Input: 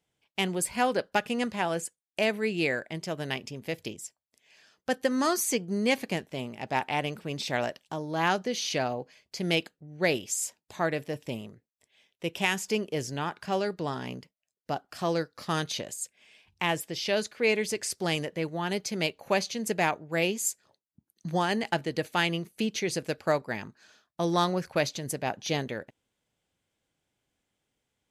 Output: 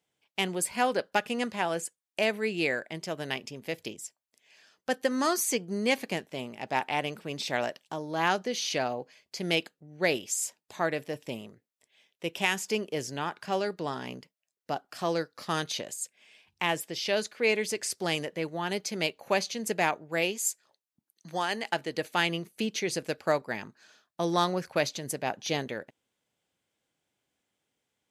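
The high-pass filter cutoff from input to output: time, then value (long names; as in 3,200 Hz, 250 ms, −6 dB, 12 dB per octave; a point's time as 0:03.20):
high-pass filter 6 dB per octave
0:20.09 210 Hz
0:20.49 700 Hz
0:21.52 700 Hz
0:22.25 180 Hz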